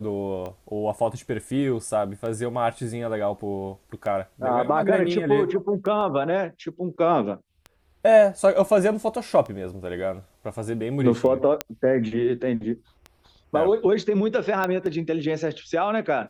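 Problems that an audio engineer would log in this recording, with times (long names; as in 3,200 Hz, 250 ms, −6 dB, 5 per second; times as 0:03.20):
scratch tick 33 1/3 rpm −23 dBFS
0:06.01: drop-out 2.1 ms
0:11.61: click −8 dBFS
0:14.64: click −12 dBFS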